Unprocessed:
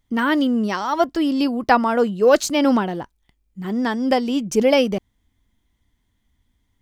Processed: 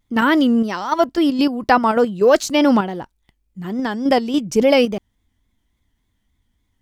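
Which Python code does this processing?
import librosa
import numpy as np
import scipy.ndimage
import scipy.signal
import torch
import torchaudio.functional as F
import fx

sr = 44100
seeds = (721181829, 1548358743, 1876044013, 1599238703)

p1 = fx.level_steps(x, sr, step_db=20)
p2 = x + F.gain(torch.from_numpy(p1), 2.5).numpy()
p3 = fx.vibrato(p2, sr, rate_hz=3.5, depth_cents=77.0)
y = F.gain(torch.from_numpy(p3), -2.5).numpy()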